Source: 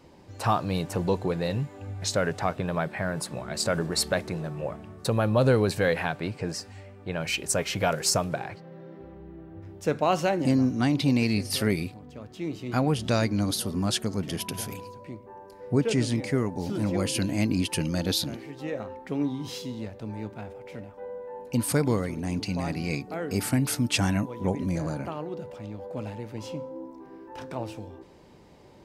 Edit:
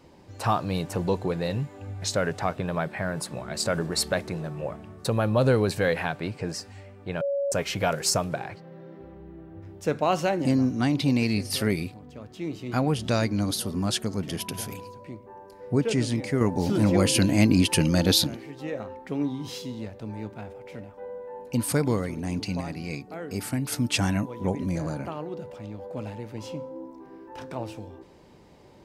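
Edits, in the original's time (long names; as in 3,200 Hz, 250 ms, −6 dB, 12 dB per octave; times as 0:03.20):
0:07.21–0:07.52: beep over 561 Hz −23.5 dBFS
0:16.41–0:18.27: clip gain +6 dB
0:22.61–0:23.72: clip gain −4 dB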